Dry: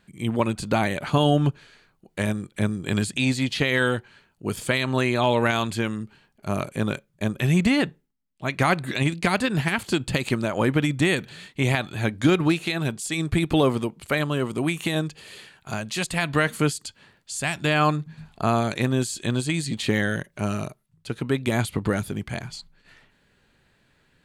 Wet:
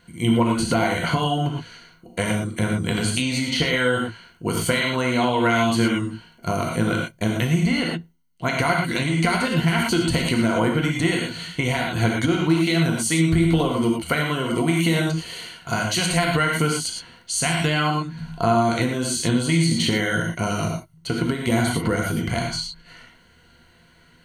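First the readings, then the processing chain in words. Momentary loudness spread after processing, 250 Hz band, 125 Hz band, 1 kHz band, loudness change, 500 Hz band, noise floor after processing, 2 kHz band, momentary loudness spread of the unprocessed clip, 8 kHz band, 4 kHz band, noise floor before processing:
9 LU, +3.0 dB, +2.5 dB, +3.5 dB, +2.5 dB, +1.5 dB, -55 dBFS, +2.5 dB, 12 LU, +6.5 dB, +5.0 dB, -66 dBFS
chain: gated-style reverb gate 140 ms flat, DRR -0.5 dB; compression, threshold -23 dBFS, peak gain reduction 11.5 dB; rippled EQ curve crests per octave 1.9, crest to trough 11 dB; trim +4.5 dB

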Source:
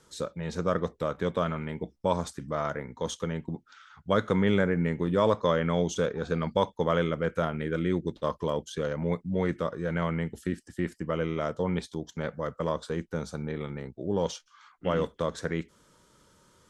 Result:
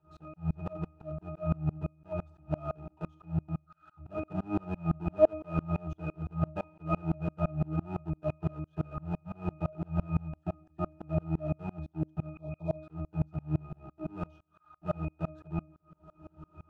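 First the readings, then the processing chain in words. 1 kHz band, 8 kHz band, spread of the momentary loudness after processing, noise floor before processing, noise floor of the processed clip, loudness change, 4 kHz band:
-9.0 dB, under -30 dB, 9 LU, -63 dBFS, -70 dBFS, -5.5 dB, under -20 dB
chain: square wave that keeps the level; upward compressor, threshold -29 dBFS; peaking EQ 860 Hz +13.5 dB 0.61 oct; pitch-class resonator D#, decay 0.26 s; two-slope reverb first 0.71 s, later 2.2 s, DRR 20 dB; spectral replace 12.37–12.75 s, 1.2–3.1 kHz; sawtooth tremolo in dB swelling 5.9 Hz, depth 31 dB; trim +8.5 dB

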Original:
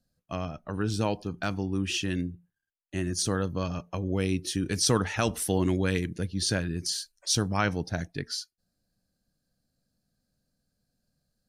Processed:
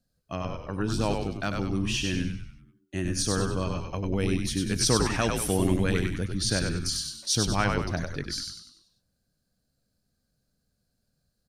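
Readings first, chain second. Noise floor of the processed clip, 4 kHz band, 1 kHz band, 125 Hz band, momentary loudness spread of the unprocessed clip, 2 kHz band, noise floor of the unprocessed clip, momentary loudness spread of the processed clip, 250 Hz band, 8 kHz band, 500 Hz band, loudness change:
-77 dBFS, +2.0 dB, +1.5 dB, +1.5 dB, 9 LU, +1.5 dB, -83 dBFS, 10 LU, +1.0 dB, +1.5 dB, +1.0 dB, +1.5 dB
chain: frequency-shifting echo 97 ms, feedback 44%, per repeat -78 Hz, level -4 dB

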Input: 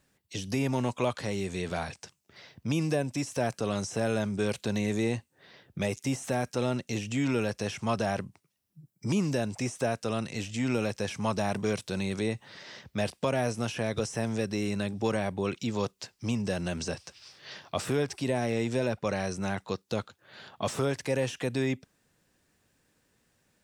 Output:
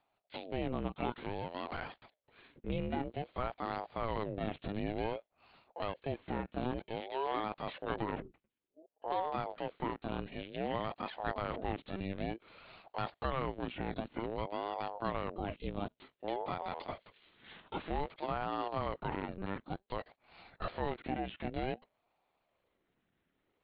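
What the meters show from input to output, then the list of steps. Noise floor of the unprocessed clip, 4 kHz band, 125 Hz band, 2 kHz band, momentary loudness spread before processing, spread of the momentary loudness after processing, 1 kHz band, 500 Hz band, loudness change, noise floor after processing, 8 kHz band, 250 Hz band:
-74 dBFS, -9.5 dB, -11.0 dB, -9.0 dB, 9 LU, 9 LU, -1.0 dB, -8.5 dB, -8.0 dB, -82 dBFS, under -40 dB, -10.5 dB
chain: LPC vocoder at 8 kHz pitch kept; ring modulator with a swept carrier 470 Hz, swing 60%, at 0.54 Hz; trim -5 dB

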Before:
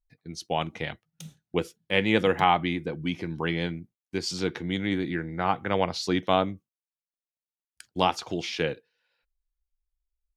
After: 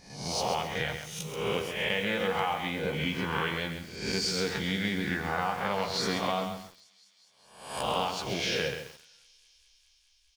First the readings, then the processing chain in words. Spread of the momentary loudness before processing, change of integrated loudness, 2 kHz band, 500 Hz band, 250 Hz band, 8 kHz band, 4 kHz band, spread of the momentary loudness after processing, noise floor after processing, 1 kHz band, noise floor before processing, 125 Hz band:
17 LU, -3.0 dB, 0.0 dB, -3.5 dB, -5.0 dB, +4.5 dB, +1.0 dB, 8 LU, -65 dBFS, -4.0 dB, under -85 dBFS, -3.0 dB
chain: reverse spectral sustain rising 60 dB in 0.71 s; peaking EQ 310 Hz -12.5 dB 0.48 oct; compression 8:1, threshold -31 dBFS, peak gain reduction 15 dB; doubling 15 ms -7 dB; feedback echo behind a high-pass 206 ms, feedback 82%, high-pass 5.3 kHz, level -17.5 dB; two-slope reverb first 0.59 s, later 1.8 s, from -22 dB, DRR 14.5 dB; bit-crushed delay 133 ms, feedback 35%, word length 8-bit, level -7 dB; trim +3.5 dB

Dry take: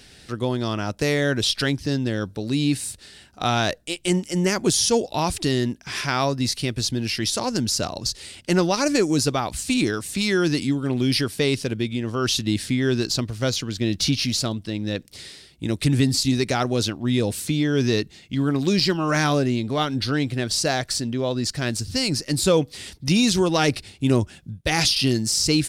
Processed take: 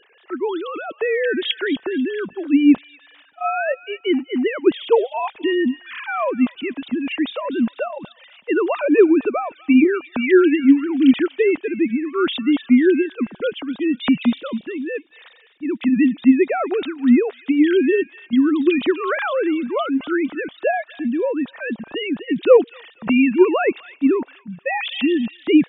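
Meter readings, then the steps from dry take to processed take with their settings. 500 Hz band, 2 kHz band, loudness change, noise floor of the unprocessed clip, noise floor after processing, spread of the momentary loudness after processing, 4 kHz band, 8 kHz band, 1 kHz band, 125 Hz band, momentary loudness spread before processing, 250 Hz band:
+6.0 dB, +2.5 dB, +3.5 dB, -50 dBFS, -52 dBFS, 12 LU, -7.5 dB, under -40 dB, +1.5 dB, under -15 dB, 8 LU, +6.0 dB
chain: formants replaced by sine waves; feedback echo behind a high-pass 245 ms, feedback 31%, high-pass 2.1 kHz, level -12 dB; trim +4 dB

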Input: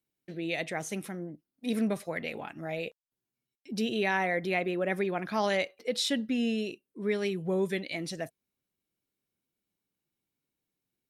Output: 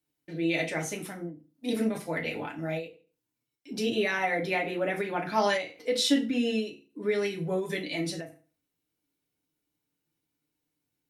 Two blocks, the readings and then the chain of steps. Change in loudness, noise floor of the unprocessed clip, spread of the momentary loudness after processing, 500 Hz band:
+2.0 dB, under -85 dBFS, 13 LU, +1.5 dB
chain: FDN reverb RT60 0.31 s, low-frequency decay 1.1×, high-frequency decay 0.9×, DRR -1 dB; endings held to a fixed fall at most 140 dB/s

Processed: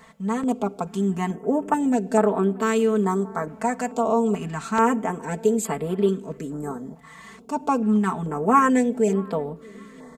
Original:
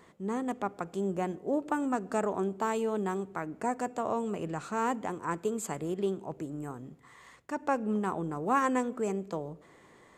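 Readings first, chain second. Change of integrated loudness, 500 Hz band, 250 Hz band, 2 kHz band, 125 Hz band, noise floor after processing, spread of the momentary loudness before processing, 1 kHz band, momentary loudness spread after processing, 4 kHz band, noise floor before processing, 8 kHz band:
+9.5 dB, +9.5 dB, +10.5 dB, +7.5 dB, +10.0 dB, -46 dBFS, 9 LU, +8.5 dB, 12 LU, +8.5 dB, -58 dBFS, +8.5 dB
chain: comb 4.5 ms, depth 91%; on a send: filtered feedback delay 630 ms, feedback 67%, low-pass 1.2 kHz, level -23 dB; on the sum: step-sequenced notch 2.3 Hz 350–6300 Hz; trim +7 dB

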